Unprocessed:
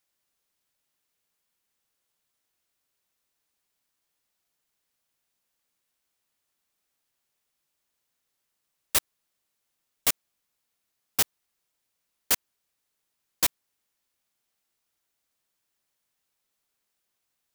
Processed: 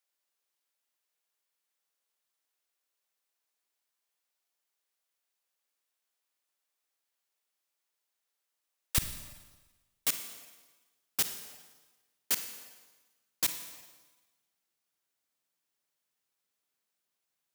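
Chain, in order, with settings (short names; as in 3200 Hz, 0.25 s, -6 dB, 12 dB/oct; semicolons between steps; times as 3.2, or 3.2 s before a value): HPF 400 Hz 12 dB/oct, from 8.98 s 110 Hz; Schroeder reverb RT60 1.2 s, DRR 8 dB; dynamic EQ 730 Hz, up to -6 dB, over -47 dBFS, Q 0.73; gain -5.5 dB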